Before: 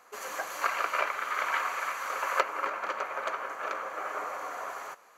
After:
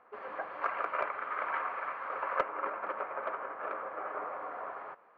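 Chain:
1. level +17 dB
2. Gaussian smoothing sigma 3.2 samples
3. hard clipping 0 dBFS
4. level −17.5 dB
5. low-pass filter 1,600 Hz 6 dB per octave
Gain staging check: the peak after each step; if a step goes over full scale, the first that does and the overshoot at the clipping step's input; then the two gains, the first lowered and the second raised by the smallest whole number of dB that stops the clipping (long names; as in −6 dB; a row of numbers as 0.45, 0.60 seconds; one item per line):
+5.5, +4.5, 0.0, −17.5, −17.5 dBFS
step 1, 4.5 dB
step 1 +12 dB, step 4 −12.5 dB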